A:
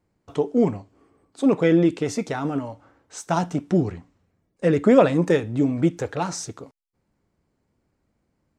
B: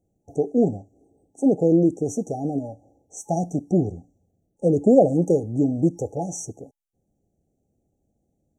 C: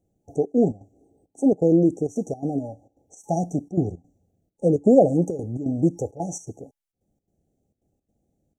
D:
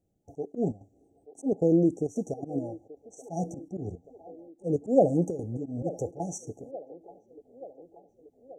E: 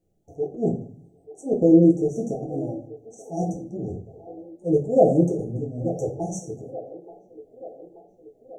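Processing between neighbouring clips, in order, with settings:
brick-wall band-stop 850–5,600 Hz
gate pattern "xxxxx.xx." 167 BPM −12 dB
volume swells 127 ms; delay with a band-pass on its return 881 ms, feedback 62%, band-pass 710 Hz, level −15 dB; level −4.5 dB
convolution reverb RT60 0.45 s, pre-delay 6 ms, DRR −1 dB

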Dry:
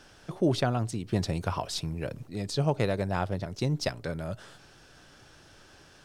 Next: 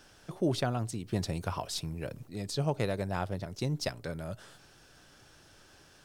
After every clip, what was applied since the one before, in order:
high-shelf EQ 10,000 Hz +10 dB
level −4 dB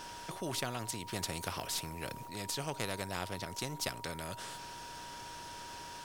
steady tone 950 Hz −40 dBFS
every bin compressed towards the loudest bin 2 to 1
level −2.5 dB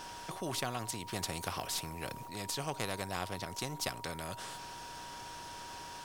hollow resonant body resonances 760/1,100 Hz, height 6 dB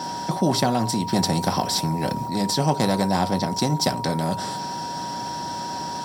convolution reverb RT60 0.15 s, pre-delay 3 ms, DRR 7 dB
level +5.5 dB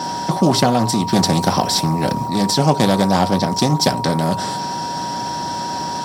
highs frequency-modulated by the lows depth 0.19 ms
level +6 dB

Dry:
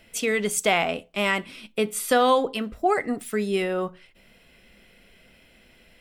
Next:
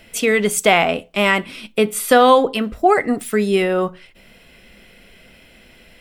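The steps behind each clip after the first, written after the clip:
dynamic equaliser 6,300 Hz, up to −4 dB, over −41 dBFS, Q 0.81
level +8 dB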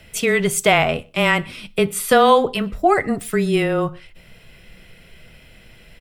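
low shelf with overshoot 180 Hz +7 dB, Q 1.5
frequency shifter −16 Hz
slap from a distant wall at 21 metres, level −28 dB
level −1 dB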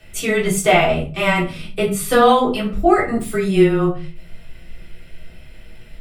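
rectangular room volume 190 cubic metres, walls furnished, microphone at 3.6 metres
level −7 dB

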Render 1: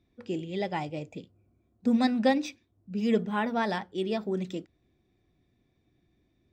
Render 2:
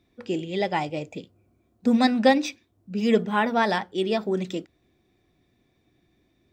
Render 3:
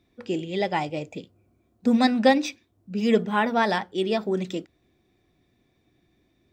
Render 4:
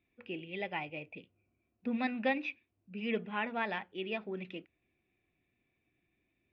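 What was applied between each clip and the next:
low-shelf EQ 240 Hz −7 dB; level +7.5 dB
floating-point word with a short mantissa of 8 bits
transistor ladder low-pass 2,800 Hz, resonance 70%; level −3 dB

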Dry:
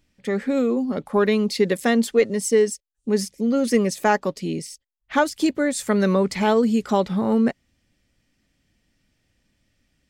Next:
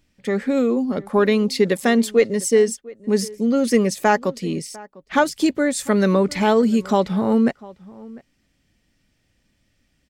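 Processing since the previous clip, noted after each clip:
slap from a distant wall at 120 metres, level −21 dB
level +2 dB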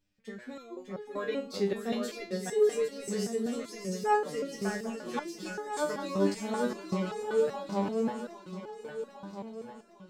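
thirty-one-band graphic EQ 250 Hz −8 dB, 2,000 Hz −4 dB, 10,000 Hz −7 dB
feedback echo with a long and a short gap by turns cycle 804 ms, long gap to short 3 to 1, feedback 54%, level −3.5 dB
step-sequenced resonator 5.2 Hz 99–420 Hz
level −3 dB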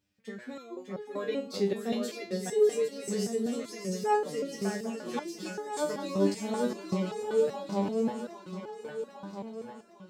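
high-pass filter 66 Hz
dynamic equaliser 1,400 Hz, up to −6 dB, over −47 dBFS, Q 1.2
level +1.5 dB

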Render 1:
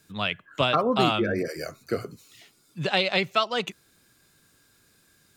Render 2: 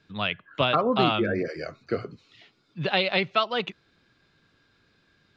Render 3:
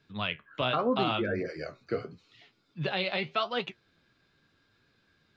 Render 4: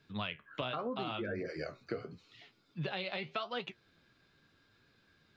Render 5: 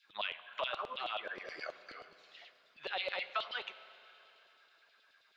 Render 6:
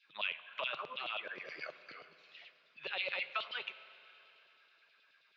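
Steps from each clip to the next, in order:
low-pass filter 4,300 Hz 24 dB per octave
brickwall limiter −12.5 dBFS, peak gain reduction 5 dB; flanger 0.82 Hz, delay 6.9 ms, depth 10 ms, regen +60%
downward compressor 5 to 1, threshold −35 dBFS, peak gain reduction 12 dB
auto-filter high-pass saw down 9.4 Hz 520–3,800 Hz; four-comb reverb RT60 3.5 s, combs from 32 ms, DRR 14 dB; level −1 dB
loudspeaker in its box 120–5,800 Hz, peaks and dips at 150 Hz +8 dB, 750 Hz −5 dB, 2,500 Hz +8 dB; level −2.5 dB

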